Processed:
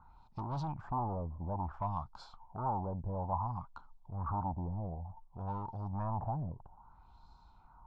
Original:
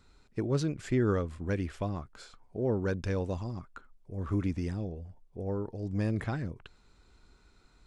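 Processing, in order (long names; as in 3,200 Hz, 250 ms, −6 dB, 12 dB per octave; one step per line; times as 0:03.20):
soft clipping −34 dBFS, distortion −7 dB
auto-filter low-pass sine 0.58 Hz 470–4,400 Hz
drawn EQ curve 160 Hz 0 dB, 460 Hz −16 dB, 900 Hz +14 dB, 1,900 Hz −22 dB, 5,400 Hz −7 dB
level +1 dB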